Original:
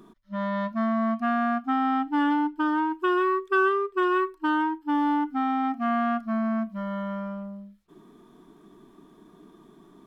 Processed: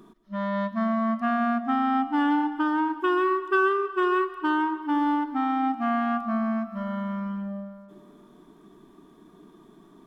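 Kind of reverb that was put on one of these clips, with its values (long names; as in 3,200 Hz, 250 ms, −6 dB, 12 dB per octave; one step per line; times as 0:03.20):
comb and all-pass reverb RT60 1.9 s, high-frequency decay 0.7×, pre-delay 105 ms, DRR 13 dB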